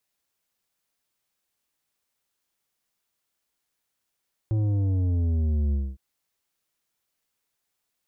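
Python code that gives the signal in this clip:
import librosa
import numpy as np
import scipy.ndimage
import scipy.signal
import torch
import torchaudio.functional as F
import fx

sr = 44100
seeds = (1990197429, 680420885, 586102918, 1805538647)

y = fx.sub_drop(sr, level_db=-22.0, start_hz=110.0, length_s=1.46, drive_db=9.0, fade_s=0.24, end_hz=65.0)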